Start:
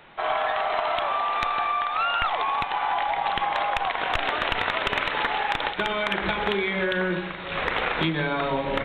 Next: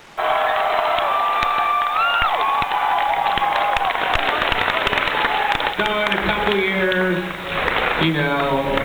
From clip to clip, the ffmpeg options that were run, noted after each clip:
-af "acrusher=bits=7:mix=0:aa=0.5,volume=6.5dB"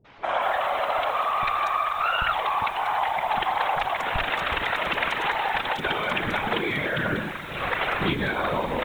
-filter_complex "[0:a]acrossover=split=340|4300[a][b][c];[b]adelay=50[d];[c]adelay=240[e];[a][d][e]amix=inputs=3:normalize=0,afftfilt=real='hypot(re,im)*cos(2*PI*random(0))':imag='hypot(re,im)*sin(2*PI*random(1))':win_size=512:overlap=0.75"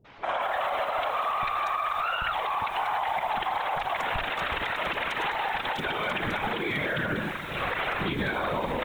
-af "alimiter=limit=-19.5dB:level=0:latency=1:release=70"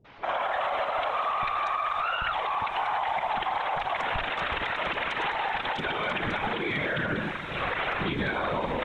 -af "lowpass=5.9k"

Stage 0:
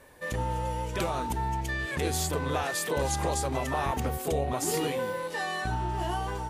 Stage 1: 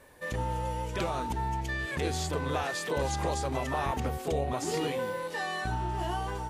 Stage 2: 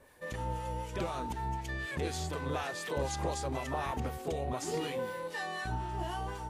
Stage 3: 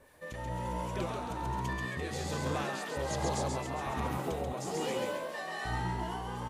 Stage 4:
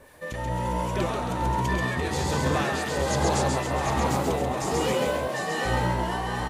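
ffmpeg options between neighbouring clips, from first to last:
-filter_complex "[0:a]acrossover=split=7100[a][b];[b]acompressor=threshold=-51dB:ratio=4:attack=1:release=60[c];[a][c]amix=inputs=2:normalize=0,volume=-1.5dB"
-filter_complex "[0:a]acrossover=split=960[a][b];[a]aeval=exprs='val(0)*(1-0.5/2+0.5/2*cos(2*PI*4*n/s))':c=same[c];[b]aeval=exprs='val(0)*(1-0.5/2-0.5/2*cos(2*PI*4*n/s))':c=same[d];[c][d]amix=inputs=2:normalize=0,volume=-2dB"
-filter_complex "[0:a]asplit=9[a][b][c][d][e][f][g][h][i];[b]adelay=135,afreqshift=60,volume=-3dB[j];[c]adelay=270,afreqshift=120,volume=-8dB[k];[d]adelay=405,afreqshift=180,volume=-13.1dB[l];[e]adelay=540,afreqshift=240,volume=-18.1dB[m];[f]adelay=675,afreqshift=300,volume=-23.1dB[n];[g]adelay=810,afreqshift=360,volume=-28.2dB[o];[h]adelay=945,afreqshift=420,volume=-33.2dB[p];[i]adelay=1080,afreqshift=480,volume=-38.3dB[q];[a][j][k][l][m][n][o][p][q]amix=inputs=9:normalize=0,tremolo=f=1.2:d=0.36"
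-af "aecho=1:1:750:0.501,volume=8.5dB"

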